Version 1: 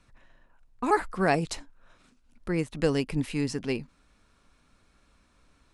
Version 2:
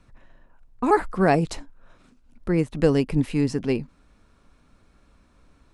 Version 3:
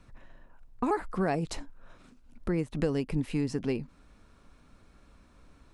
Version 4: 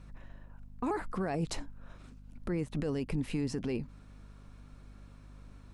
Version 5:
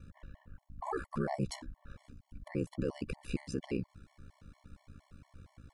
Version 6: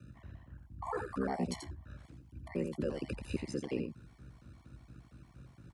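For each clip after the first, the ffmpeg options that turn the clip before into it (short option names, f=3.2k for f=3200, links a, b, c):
-af "tiltshelf=f=1.2k:g=4,volume=3dB"
-af "acompressor=threshold=-28dB:ratio=3"
-af "alimiter=level_in=0.5dB:limit=-24dB:level=0:latency=1:release=14,volume=-0.5dB,aeval=exprs='val(0)+0.00282*(sin(2*PI*50*n/s)+sin(2*PI*2*50*n/s)/2+sin(2*PI*3*50*n/s)/3+sin(2*PI*4*50*n/s)/4+sin(2*PI*5*50*n/s)/5)':c=same"
-af "aeval=exprs='val(0)*sin(2*PI*33*n/s)':c=same,afftfilt=real='re*gt(sin(2*PI*4.3*pts/sr)*(1-2*mod(floor(b*sr/1024/580),2)),0)':imag='im*gt(sin(2*PI*4.3*pts/sr)*(1-2*mod(floor(b*sr/1024/580),2)),0)':win_size=1024:overlap=0.75,volume=3dB"
-af "afreqshift=44,aecho=1:1:86:0.501,volume=-1dB"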